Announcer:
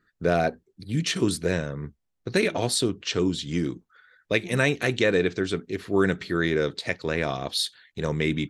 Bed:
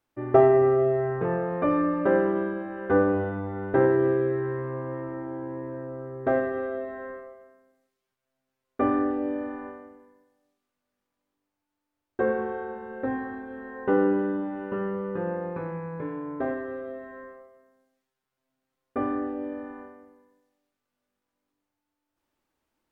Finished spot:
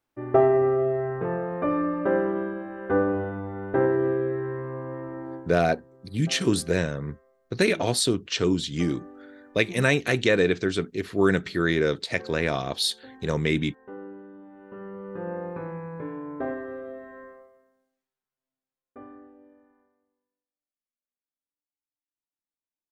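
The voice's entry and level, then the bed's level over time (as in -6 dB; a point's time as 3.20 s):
5.25 s, +1.0 dB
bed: 5.35 s -1.5 dB
5.58 s -18.5 dB
14.30 s -18.5 dB
15.38 s -1.5 dB
17.43 s -1.5 dB
19.85 s -25 dB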